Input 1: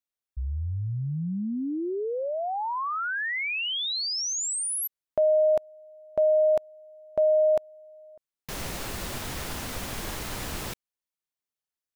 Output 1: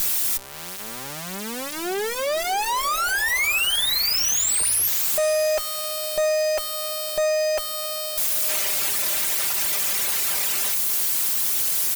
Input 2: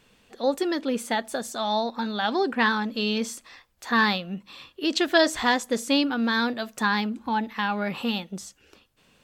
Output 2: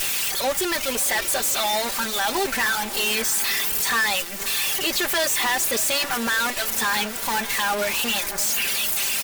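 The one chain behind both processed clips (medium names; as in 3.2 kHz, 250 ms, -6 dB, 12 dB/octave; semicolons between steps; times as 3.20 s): zero-crossing glitches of -15 dBFS; reverb removal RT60 0.92 s; high-pass 460 Hz 12 dB/octave; comb 5.1 ms, depth 66%; dynamic bell 2.2 kHz, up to +5 dB, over -39 dBFS, Q 1.6; in parallel at -1.5 dB: compressor with a negative ratio -25 dBFS, ratio -1; on the sum: saturation -18 dBFS; Chebyshev shaper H 8 -11 dB, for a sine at -18 dBFS; on a send: echo that smears into a reverb 602 ms, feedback 51%, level -14.5 dB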